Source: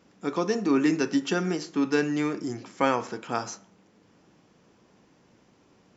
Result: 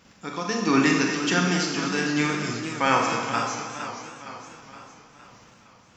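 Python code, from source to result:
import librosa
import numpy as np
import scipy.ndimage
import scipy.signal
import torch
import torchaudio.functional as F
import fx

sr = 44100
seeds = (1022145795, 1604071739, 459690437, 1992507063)

p1 = fx.peak_eq(x, sr, hz=360.0, db=-11.5, octaves=2.0)
p2 = fx.level_steps(p1, sr, step_db=11)
p3 = p1 + (p2 * librosa.db_to_amplitude(-2.0))
p4 = p3 * (1.0 - 0.62 / 2.0 + 0.62 / 2.0 * np.cos(2.0 * np.pi * 1.3 * (np.arange(len(p3)) / sr)))
p5 = p4 + fx.echo_single(p4, sr, ms=235, db=-10.5, dry=0)
p6 = fx.rev_schroeder(p5, sr, rt60_s=0.99, comb_ms=30, drr_db=1.5)
p7 = fx.echo_warbled(p6, sr, ms=465, feedback_pct=53, rate_hz=2.8, cents=139, wet_db=-10)
y = p7 * librosa.db_to_amplitude(6.5)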